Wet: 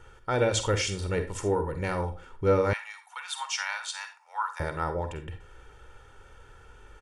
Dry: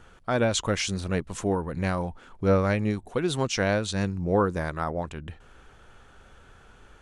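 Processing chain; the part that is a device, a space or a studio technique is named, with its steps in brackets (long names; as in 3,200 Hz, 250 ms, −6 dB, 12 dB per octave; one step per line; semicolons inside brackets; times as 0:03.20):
microphone above a desk (comb filter 2.2 ms, depth 61%; convolution reverb RT60 0.30 s, pre-delay 41 ms, DRR 7.5 dB)
notch filter 4,000 Hz, Q 12
0:02.73–0:04.60: Butterworth high-pass 840 Hz 48 dB per octave
level −2.5 dB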